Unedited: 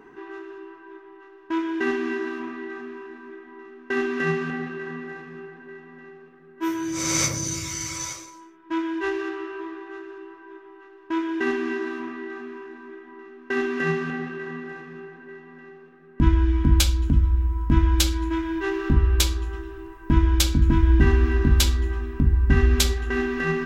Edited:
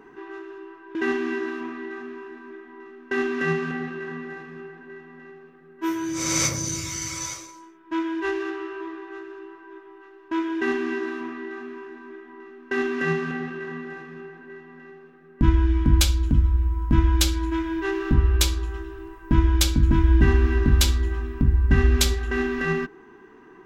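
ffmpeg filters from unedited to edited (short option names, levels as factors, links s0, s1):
-filter_complex "[0:a]asplit=2[s0][s1];[s0]atrim=end=0.952[s2];[s1]atrim=start=1.738[s3];[s2][s3]acrossfade=d=0.004:c1=hsin:c2=hsin"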